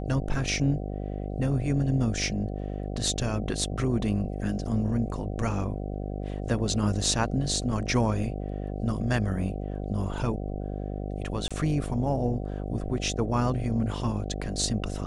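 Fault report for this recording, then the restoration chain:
buzz 50 Hz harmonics 15 -33 dBFS
11.48–11.51 s: dropout 26 ms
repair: de-hum 50 Hz, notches 15; interpolate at 11.48 s, 26 ms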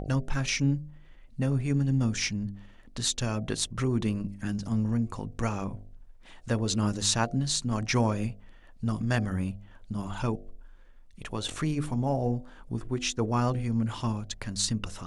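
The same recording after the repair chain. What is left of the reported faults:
nothing left

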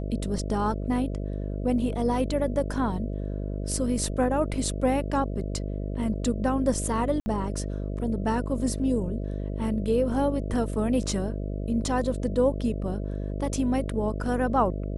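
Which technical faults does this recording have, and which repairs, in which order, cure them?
buzz 50 Hz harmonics 13 -31 dBFS
7.20–7.26 s: dropout 60 ms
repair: de-hum 50 Hz, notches 13; interpolate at 7.20 s, 60 ms

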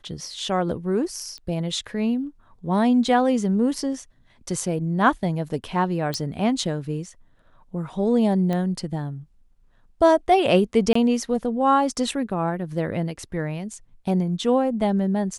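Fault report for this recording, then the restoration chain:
1.38 s: pop -25 dBFS
6.14 s: pop -13 dBFS
8.53 s: pop -15 dBFS
10.93–10.95 s: dropout 24 ms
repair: de-click; interpolate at 10.93 s, 24 ms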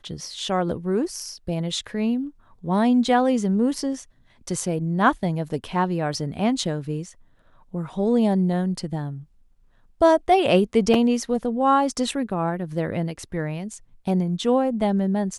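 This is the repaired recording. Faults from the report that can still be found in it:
nothing left

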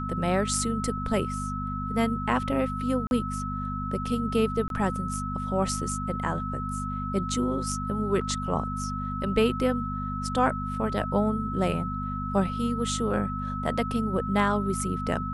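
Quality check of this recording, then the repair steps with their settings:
hum 50 Hz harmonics 5 -33 dBFS
whine 1.3 kHz -33 dBFS
3.07–3.11 s: dropout 41 ms
4.68–4.70 s: dropout 22 ms
8.21 s: dropout 4.2 ms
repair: band-stop 1.3 kHz, Q 30; de-hum 50 Hz, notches 5; interpolate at 3.07 s, 41 ms; interpolate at 4.68 s, 22 ms; interpolate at 8.21 s, 4.2 ms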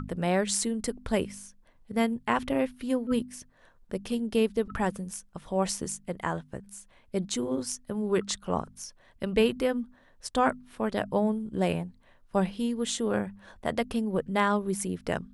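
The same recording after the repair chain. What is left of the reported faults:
nothing left

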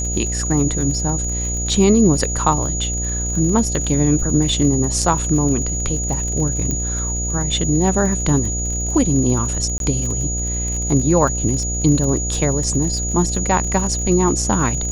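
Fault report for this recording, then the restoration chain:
buzz 60 Hz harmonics 13 -24 dBFS
crackle 39 per s -25 dBFS
whine 6.8 kHz -23 dBFS
6.71 s: pop -9 dBFS
9.78–9.80 s: dropout 22 ms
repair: de-click; de-hum 60 Hz, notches 13; band-stop 6.8 kHz, Q 30; interpolate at 9.78 s, 22 ms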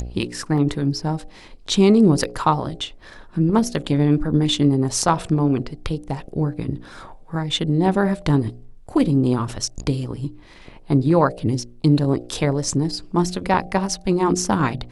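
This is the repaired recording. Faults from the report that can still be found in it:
nothing left

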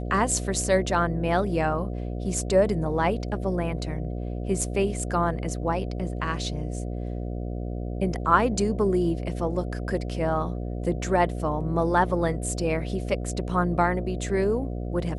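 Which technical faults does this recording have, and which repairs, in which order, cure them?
buzz 60 Hz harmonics 12 -31 dBFS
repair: de-hum 60 Hz, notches 12

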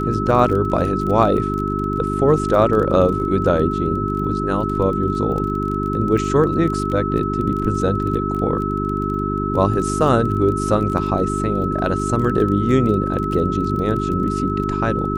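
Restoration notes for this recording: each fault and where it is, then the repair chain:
crackle 22 per s -26 dBFS
hum 50 Hz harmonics 8 -23 dBFS
whine 1.3 kHz -24 dBFS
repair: de-click; band-stop 1.3 kHz, Q 30; de-hum 50 Hz, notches 8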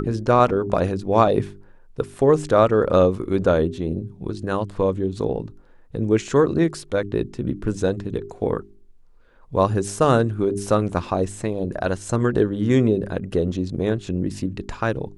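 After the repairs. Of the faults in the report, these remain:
nothing left

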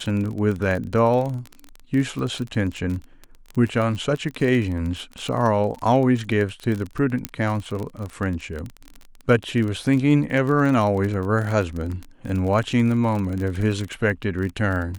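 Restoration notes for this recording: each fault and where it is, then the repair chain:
crackle 27 per s -26 dBFS
7.25 s: pop -7 dBFS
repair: de-click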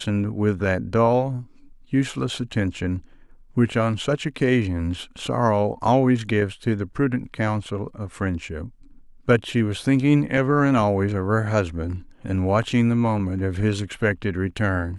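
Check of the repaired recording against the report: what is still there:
nothing left

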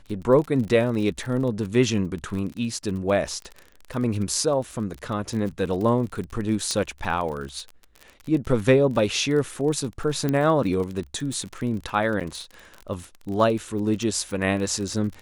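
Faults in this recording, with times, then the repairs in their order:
crackle 35 per s -30 dBFS
6.71 s: pop -13 dBFS
10.29 s: pop -12 dBFS
12.20–12.21 s: dropout 7 ms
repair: de-click; interpolate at 12.20 s, 7 ms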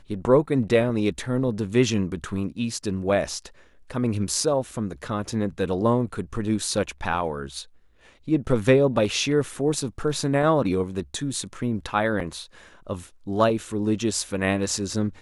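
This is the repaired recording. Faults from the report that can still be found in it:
6.71 s: pop

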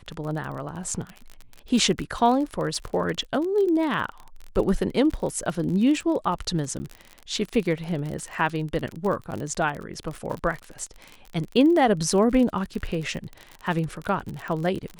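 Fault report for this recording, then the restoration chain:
crackle 38 per s -29 dBFS
6.79–6.80 s: dropout 10 ms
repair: de-click; interpolate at 6.79 s, 10 ms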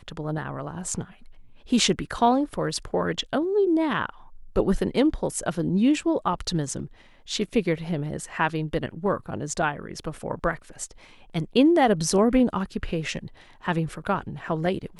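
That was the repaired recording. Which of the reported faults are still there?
nothing left

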